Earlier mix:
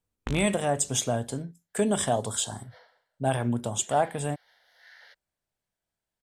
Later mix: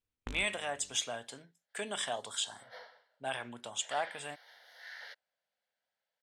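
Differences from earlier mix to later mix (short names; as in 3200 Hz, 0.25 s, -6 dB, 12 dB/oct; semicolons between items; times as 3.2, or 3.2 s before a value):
speech: add band-pass 2600 Hz, Q 0.98; first sound -8.0 dB; second sound +5.0 dB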